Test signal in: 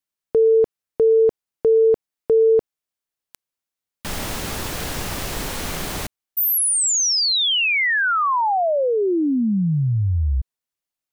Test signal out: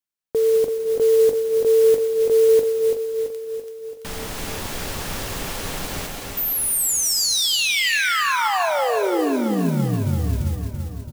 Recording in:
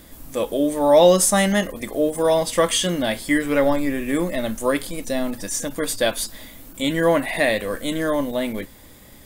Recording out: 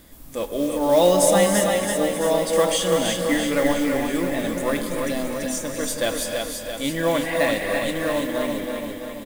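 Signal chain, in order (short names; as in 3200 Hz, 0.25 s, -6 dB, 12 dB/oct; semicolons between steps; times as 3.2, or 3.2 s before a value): on a send: feedback echo 0.335 s, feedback 58%, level -5.5 dB; on the sum: non-linear reverb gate 0.36 s rising, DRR 4.5 dB; modulation noise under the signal 21 dB; gain -4 dB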